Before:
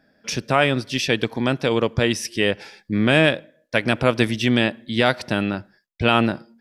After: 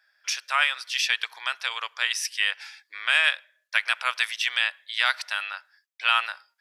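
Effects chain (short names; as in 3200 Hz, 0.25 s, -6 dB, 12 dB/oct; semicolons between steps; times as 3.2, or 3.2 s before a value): inverse Chebyshev high-pass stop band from 190 Hz, stop band 80 dB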